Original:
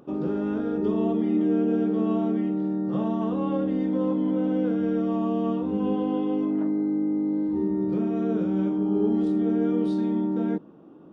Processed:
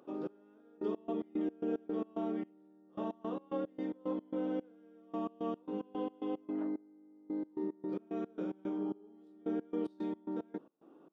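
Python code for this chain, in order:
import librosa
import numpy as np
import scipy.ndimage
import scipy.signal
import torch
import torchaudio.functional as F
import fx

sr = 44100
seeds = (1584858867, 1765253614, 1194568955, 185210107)

y = scipy.signal.sosfilt(scipy.signal.butter(2, 330.0, 'highpass', fs=sr, output='sos'), x)
y = fx.step_gate(y, sr, bpm=111, pattern='xx....x.x.x.x.x.', floor_db=-24.0, edge_ms=4.5)
y = F.gain(torch.from_numpy(y), -7.0).numpy()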